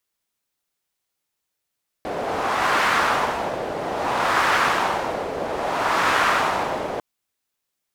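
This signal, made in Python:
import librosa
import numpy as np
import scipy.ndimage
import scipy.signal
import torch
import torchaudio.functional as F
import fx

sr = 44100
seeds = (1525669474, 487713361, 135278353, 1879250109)

y = fx.wind(sr, seeds[0], length_s=4.95, low_hz=570.0, high_hz=1300.0, q=1.6, gusts=3, swing_db=9.0)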